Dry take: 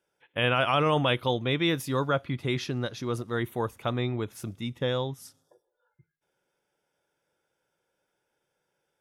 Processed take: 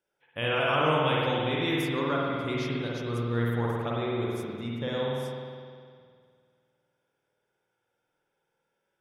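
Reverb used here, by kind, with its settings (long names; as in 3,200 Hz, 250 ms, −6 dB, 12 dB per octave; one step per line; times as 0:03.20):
spring reverb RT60 2.1 s, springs 51 ms, chirp 75 ms, DRR −4.5 dB
level −6 dB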